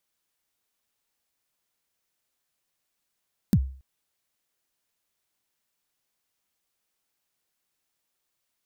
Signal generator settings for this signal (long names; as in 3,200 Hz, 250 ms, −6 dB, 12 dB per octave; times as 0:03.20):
synth kick length 0.28 s, from 240 Hz, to 66 Hz, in 59 ms, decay 0.44 s, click on, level −12.5 dB